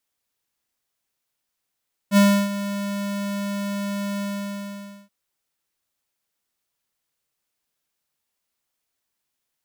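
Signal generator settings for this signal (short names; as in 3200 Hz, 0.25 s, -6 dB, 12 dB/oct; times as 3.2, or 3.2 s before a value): ADSR square 201 Hz, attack 60 ms, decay 0.315 s, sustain -14 dB, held 2.09 s, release 0.889 s -13 dBFS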